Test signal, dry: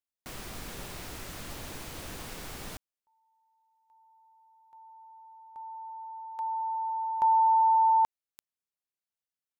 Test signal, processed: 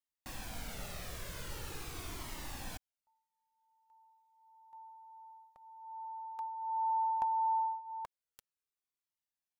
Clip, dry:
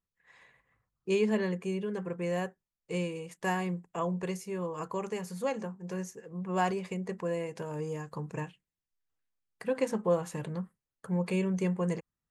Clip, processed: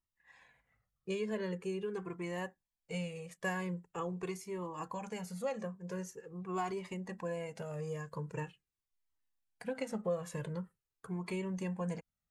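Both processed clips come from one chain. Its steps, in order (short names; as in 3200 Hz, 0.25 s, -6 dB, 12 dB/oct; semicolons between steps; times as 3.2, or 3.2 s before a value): compressor, threshold -28 dBFS; cascading flanger falling 0.44 Hz; gain +1 dB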